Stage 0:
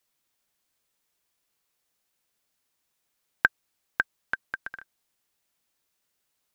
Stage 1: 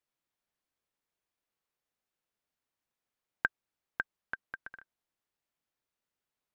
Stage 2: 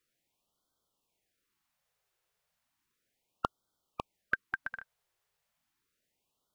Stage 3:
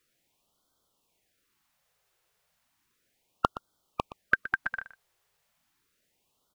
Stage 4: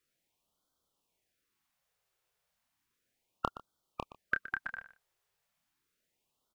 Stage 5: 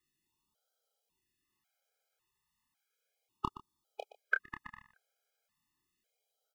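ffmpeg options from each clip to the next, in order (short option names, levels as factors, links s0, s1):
-af "highshelf=f=3500:g=-11,volume=0.447"
-af "afftfilt=real='re*(1-between(b*sr/1024,240*pow(2200/240,0.5+0.5*sin(2*PI*0.34*pts/sr))/1.41,240*pow(2200/240,0.5+0.5*sin(2*PI*0.34*pts/sr))*1.41))':imag='im*(1-between(b*sr/1024,240*pow(2200/240,0.5+0.5*sin(2*PI*0.34*pts/sr))/1.41,240*pow(2200/240,0.5+0.5*sin(2*PI*0.34*pts/sr))*1.41))':win_size=1024:overlap=0.75,volume=2.51"
-af "aecho=1:1:120:0.178,volume=2.24"
-filter_complex "[0:a]asplit=2[s0][s1];[s1]adelay=28,volume=0.422[s2];[s0][s2]amix=inputs=2:normalize=0,volume=0.398"
-af "afftfilt=real='re*gt(sin(2*PI*0.91*pts/sr)*(1-2*mod(floor(b*sr/1024/420),2)),0)':imag='im*gt(sin(2*PI*0.91*pts/sr)*(1-2*mod(floor(b*sr/1024/420),2)),0)':win_size=1024:overlap=0.75,volume=1.19"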